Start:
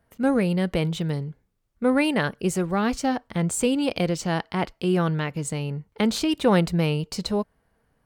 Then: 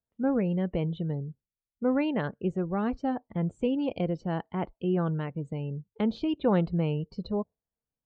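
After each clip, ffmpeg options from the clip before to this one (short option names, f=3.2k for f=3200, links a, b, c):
-af "afftdn=nr=22:nf=-36,lowpass=f=3.4k:w=0.5412,lowpass=f=3.4k:w=1.3066,equalizer=f=2.2k:t=o:w=1.8:g=-8,volume=-4.5dB"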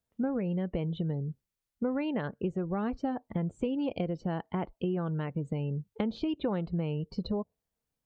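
-af "acompressor=threshold=-34dB:ratio=6,volume=5.5dB"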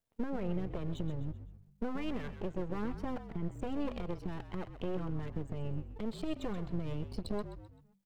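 -filter_complex "[0:a]alimiter=level_in=0.5dB:limit=-24dB:level=0:latency=1:release=104,volume=-0.5dB,aeval=exprs='max(val(0),0)':c=same,asplit=5[a][b][c][d][e];[b]adelay=129,afreqshift=-49,volume=-11dB[f];[c]adelay=258,afreqshift=-98,volume=-18.5dB[g];[d]adelay=387,afreqshift=-147,volume=-26.1dB[h];[e]adelay=516,afreqshift=-196,volume=-33.6dB[i];[a][f][g][h][i]amix=inputs=5:normalize=0,volume=1dB"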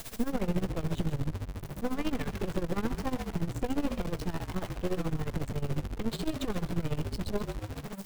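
-af "aeval=exprs='val(0)+0.5*0.0141*sgn(val(0))':c=same,tremolo=f=14:d=0.84,volume=6.5dB"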